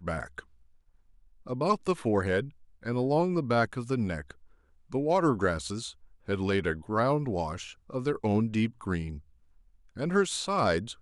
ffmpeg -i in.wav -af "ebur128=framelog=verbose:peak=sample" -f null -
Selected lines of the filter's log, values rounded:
Integrated loudness:
  I:         -29.3 LUFS
  Threshold: -40.1 LUFS
Loudness range:
  LRA:         2.1 LU
  Threshold: -50.2 LUFS
  LRA low:   -31.5 LUFS
  LRA high:  -29.3 LUFS
Sample peak:
  Peak:      -12.6 dBFS